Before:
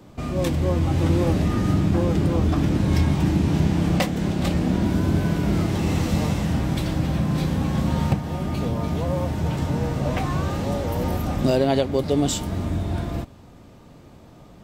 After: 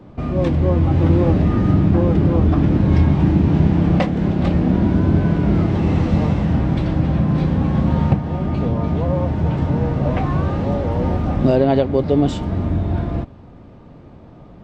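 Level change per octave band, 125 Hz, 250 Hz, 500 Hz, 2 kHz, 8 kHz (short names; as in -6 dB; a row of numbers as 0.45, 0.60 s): +5.5 dB, +5.5 dB, +4.5 dB, +0.5 dB, under -10 dB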